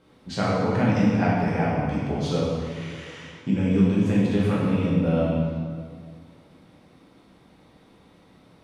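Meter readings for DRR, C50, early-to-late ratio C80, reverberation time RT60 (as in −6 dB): −8.0 dB, −1.5 dB, 0.5 dB, 2.0 s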